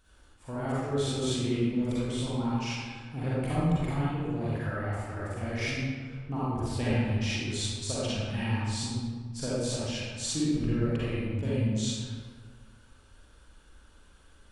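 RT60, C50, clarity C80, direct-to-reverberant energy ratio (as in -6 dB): 1.7 s, -6.5 dB, -2.5 dB, -9.5 dB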